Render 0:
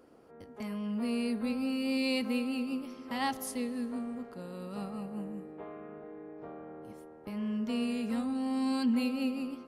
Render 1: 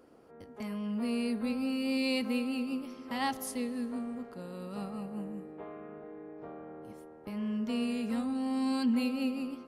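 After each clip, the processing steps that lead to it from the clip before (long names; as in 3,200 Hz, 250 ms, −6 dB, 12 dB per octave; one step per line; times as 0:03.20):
no processing that can be heard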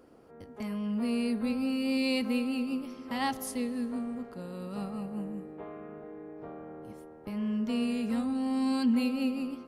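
low-shelf EQ 150 Hz +5 dB
level +1 dB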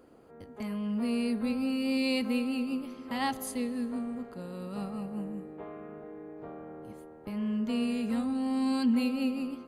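Butterworth band-reject 5,500 Hz, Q 7.9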